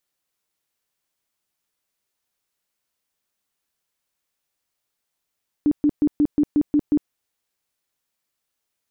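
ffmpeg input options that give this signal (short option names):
-f lavfi -i "aevalsrc='0.211*sin(2*PI*295*mod(t,0.18))*lt(mod(t,0.18),16/295)':d=1.44:s=44100"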